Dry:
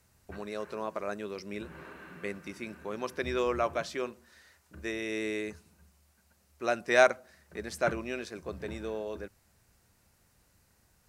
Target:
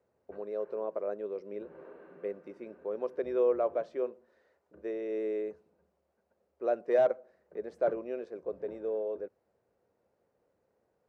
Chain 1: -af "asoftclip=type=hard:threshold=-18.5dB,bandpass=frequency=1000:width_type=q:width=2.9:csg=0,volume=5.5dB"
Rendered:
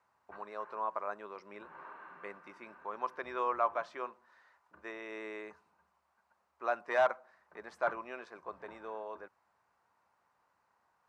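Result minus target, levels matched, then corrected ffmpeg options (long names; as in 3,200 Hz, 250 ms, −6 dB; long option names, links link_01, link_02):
1,000 Hz band +10.5 dB
-af "asoftclip=type=hard:threshold=-18.5dB,bandpass=frequency=490:width_type=q:width=2.9:csg=0,volume=5.5dB"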